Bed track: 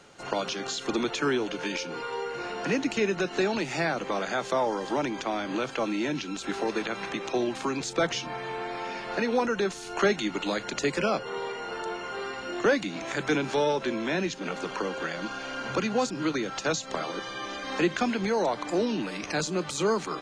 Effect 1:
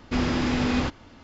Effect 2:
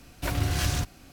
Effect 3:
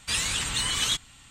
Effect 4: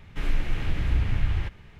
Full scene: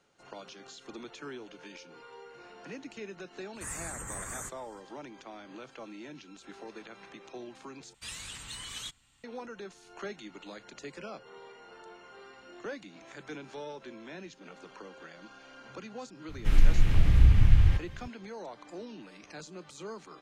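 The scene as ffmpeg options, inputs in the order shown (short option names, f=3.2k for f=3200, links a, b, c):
-filter_complex "[3:a]asplit=2[a][b];[0:a]volume=-16.5dB[c];[a]asuperstop=centerf=3600:order=8:qfactor=0.77[d];[4:a]bass=f=250:g=8,treble=f=4k:g=7[e];[c]asplit=2[f][g];[f]atrim=end=7.944[h];[b]atrim=end=1.3,asetpts=PTS-STARTPTS,volume=-15dB[i];[g]atrim=start=9.236[j];[d]atrim=end=1.3,asetpts=PTS-STARTPTS,volume=-8.5dB,afade=t=in:d=0.05,afade=t=out:st=1.25:d=0.05,adelay=155673S[k];[e]atrim=end=1.79,asetpts=PTS-STARTPTS,volume=-3dB,afade=t=in:d=0.004:c=hsin,afade=t=out:st=1.786:d=0.004:c=hsin,adelay=16290[l];[h][i]acrossfade=d=0.004:c1=hsin:c2=hsin[m];[m][j]acrossfade=d=0.004:c1=hsin:c2=hsin[n];[n][k][l]amix=inputs=3:normalize=0"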